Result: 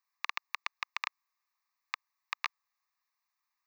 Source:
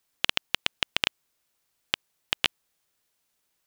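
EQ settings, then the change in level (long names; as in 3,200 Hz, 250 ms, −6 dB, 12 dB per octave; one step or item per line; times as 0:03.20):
four-pole ladder high-pass 1,100 Hz, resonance 70%
parametric band 15,000 Hz −6.5 dB 2.9 octaves
phaser with its sweep stopped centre 2,100 Hz, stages 8
+7.5 dB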